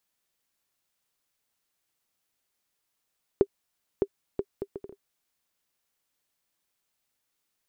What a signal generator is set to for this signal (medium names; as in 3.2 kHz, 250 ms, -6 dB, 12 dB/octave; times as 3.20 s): bouncing ball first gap 0.61 s, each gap 0.61, 397 Hz, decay 57 ms -8.5 dBFS